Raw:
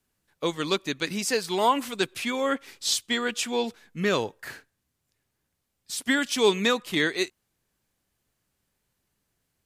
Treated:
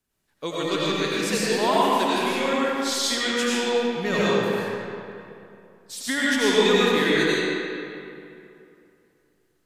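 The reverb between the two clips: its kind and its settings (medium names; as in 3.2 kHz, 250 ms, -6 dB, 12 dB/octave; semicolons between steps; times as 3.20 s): algorithmic reverb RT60 2.7 s, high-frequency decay 0.65×, pre-delay 55 ms, DRR -8 dB; trim -4 dB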